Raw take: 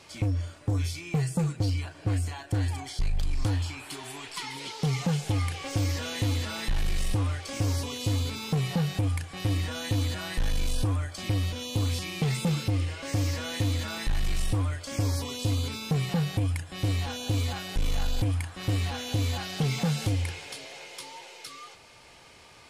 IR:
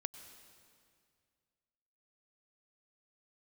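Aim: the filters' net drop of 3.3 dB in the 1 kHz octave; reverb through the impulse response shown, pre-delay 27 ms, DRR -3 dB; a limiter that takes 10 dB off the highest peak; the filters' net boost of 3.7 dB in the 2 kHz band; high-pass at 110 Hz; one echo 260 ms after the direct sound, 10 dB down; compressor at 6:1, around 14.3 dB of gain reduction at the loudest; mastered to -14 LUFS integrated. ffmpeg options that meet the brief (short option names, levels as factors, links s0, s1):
-filter_complex "[0:a]highpass=110,equalizer=f=1000:t=o:g=-6,equalizer=f=2000:t=o:g=6,acompressor=threshold=0.0112:ratio=6,alimiter=level_in=3.55:limit=0.0631:level=0:latency=1,volume=0.282,aecho=1:1:260:0.316,asplit=2[s0][s1];[1:a]atrim=start_sample=2205,adelay=27[s2];[s1][s2]afir=irnorm=-1:irlink=0,volume=1.78[s3];[s0][s3]amix=inputs=2:normalize=0,volume=17.8"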